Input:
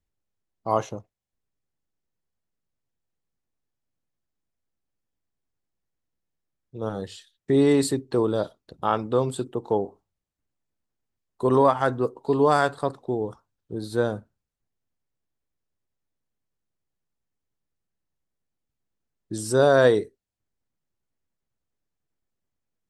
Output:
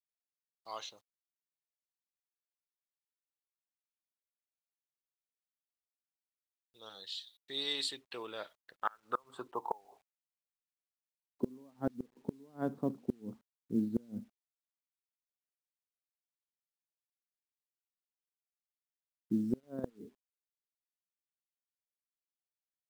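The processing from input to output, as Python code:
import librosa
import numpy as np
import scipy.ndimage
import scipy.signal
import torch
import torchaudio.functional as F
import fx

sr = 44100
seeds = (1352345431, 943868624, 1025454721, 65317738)

y = fx.level_steps(x, sr, step_db=16, at=(19.58, 20.02), fade=0.02)
y = fx.filter_sweep_bandpass(y, sr, from_hz=3900.0, to_hz=230.0, start_s=7.64, end_s=11.6, q=5.3)
y = fx.gate_flip(y, sr, shuts_db=-27.0, range_db=-32)
y = fx.quant_companded(y, sr, bits=8)
y = y * 10.0 ** (7.5 / 20.0)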